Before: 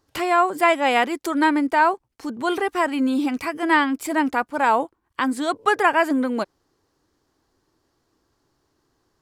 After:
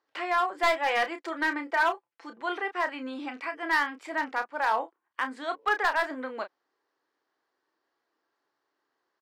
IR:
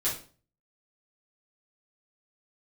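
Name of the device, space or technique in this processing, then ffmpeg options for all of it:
megaphone: -filter_complex "[0:a]asettb=1/sr,asplit=3[a][b][c];[a]atrim=end=0.544[d];[b]atrim=start=0.54:end=2.43,asetpts=PTS-STARTPTS,afade=t=in:d=0.004:c=qsin,afade=t=out:st=1.886:d=0.004:c=qsin,aecho=1:1:5.9:0.52,atrim=end_sample=83349[e];[c]atrim=start=2.426[f];[d][e]acrossfade=d=0.004:c1=hsin:c2=qsin[g];[g][f]acrossfade=d=0.004:c1=qsin:c2=hsin,highpass=500,lowpass=3.7k,equalizer=f=1.8k:t=o:w=0.55:g=4.5,asoftclip=type=hard:threshold=-11dB,asplit=2[h][i];[i]adelay=31,volume=-9dB[j];[h][j]amix=inputs=2:normalize=0,volume=-7.5dB"

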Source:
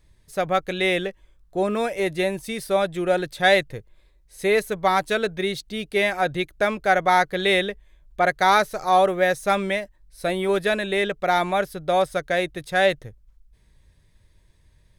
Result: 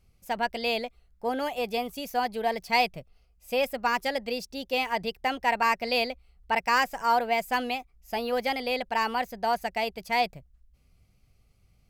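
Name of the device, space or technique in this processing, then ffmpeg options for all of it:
nightcore: -af "asetrate=55566,aresample=44100,volume=-6dB"

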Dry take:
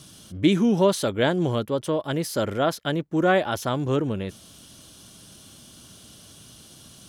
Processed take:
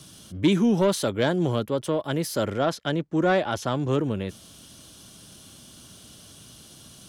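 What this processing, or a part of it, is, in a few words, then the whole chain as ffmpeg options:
one-band saturation: -filter_complex "[0:a]acrossover=split=220|4400[a][b][c];[b]asoftclip=type=tanh:threshold=-14.5dB[d];[a][d][c]amix=inputs=3:normalize=0,asettb=1/sr,asplit=3[e][f][g];[e]atrim=end=2.514[h];[f]atrim=start=2.51:end=3.88,asetpts=PTS-STARTPTS,afade=t=in:d=0.004:c=qsin,afade=t=out:st=1.366:d=0.004:c=qsin,lowpass=8.5k[i];[g]atrim=start=3.876[j];[h][i]acrossfade=d=0.004:c1=hsin:c2=qsin[k];[k][j]acrossfade=d=0.004:c1=qsin:c2=hsin"

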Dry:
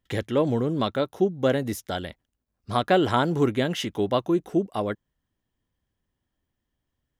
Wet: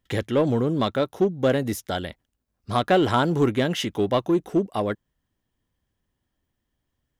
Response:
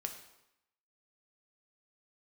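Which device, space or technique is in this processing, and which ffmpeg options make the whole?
parallel distortion: -filter_complex "[0:a]asplit=2[a][b];[b]asoftclip=type=hard:threshold=-20dB,volume=-5dB[c];[a][c]amix=inputs=2:normalize=0,volume=-1.5dB"

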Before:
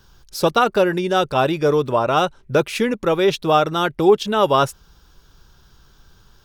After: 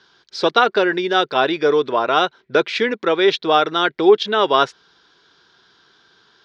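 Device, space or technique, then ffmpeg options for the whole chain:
phone earpiece: -af "highpass=470,equalizer=f=570:t=q:w=4:g=-10,equalizer=f=850:t=q:w=4:g=-8,equalizer=f=1.2k:t=q:w=4:g=-7,equalizer=f=2.7k:t=q:w=4:g=-7,lowpass=f=4.3k:w=0.5412,lowpass=f=4.3k:w=1.3066,volume=8dB"

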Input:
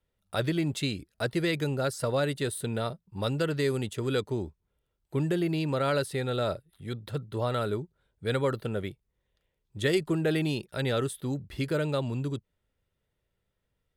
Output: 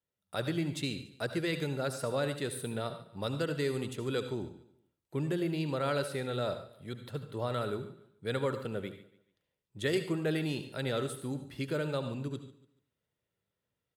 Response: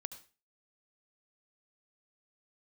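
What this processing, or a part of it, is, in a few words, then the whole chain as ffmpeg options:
far laptop microphone: -filter_complex "[0:a]aecho=1:1:144|288|432:0.126|0.0428|0.0146[a];[1:a]atrim=start_sample=2205[b];[a][b]afir=irnorm=-1:irlink=0,highpass=110,dynaudnorm=f=170:g=3:m=6dB,volume=-7.5dB"

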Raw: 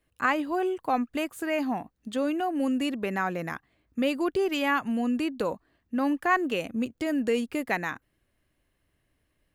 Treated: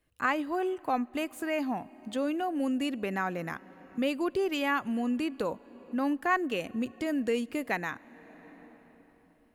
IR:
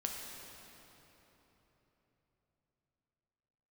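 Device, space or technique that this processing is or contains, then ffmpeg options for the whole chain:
ducked reverb: -filter_complex "[0:a]asplit=3[a][b][c];[1:a]atrim=start_sample=2205[d];[b][d]afir=irnorm=-1:irlink=0[e];[c]apad=whole_len=421045[f];[e][f]sidechaincompress=threshold=-36dB:ratio=8:attack=16:release=672,volume=-9.5dB[g];[a][g]amix=inputs=2:normalize=0,volume=-3.5dB"

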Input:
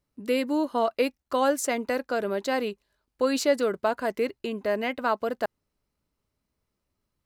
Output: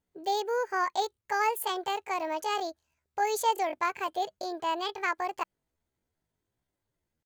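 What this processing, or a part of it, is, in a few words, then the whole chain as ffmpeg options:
chipmunk voice: -af "asetrate=70004,aresample=44100,atempo=0.629961,volume=-4dB"

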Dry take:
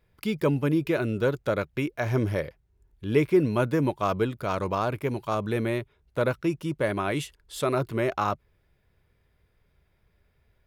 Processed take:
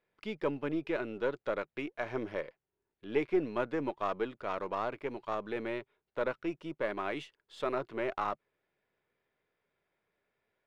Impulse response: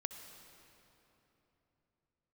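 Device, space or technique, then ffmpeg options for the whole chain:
crystal radio: -af "highpass=300,lowpass=3.4k,aeval=exprs='if(lt(val(0),0),0.708*val(0),val(0))':c=same,volume=-5.5dB"

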